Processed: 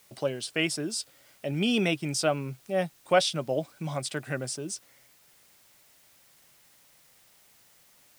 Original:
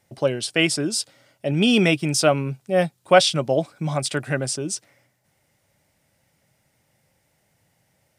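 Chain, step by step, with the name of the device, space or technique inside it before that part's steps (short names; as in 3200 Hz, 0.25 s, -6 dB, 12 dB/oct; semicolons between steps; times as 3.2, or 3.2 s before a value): noise-reduction cassette on a plain deck (mismatched tape noise reduction encoder only; wow and flutter; white noise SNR 29 dB); bell 85 Hz -4.5 dB 0.72 oct; gain -8 dB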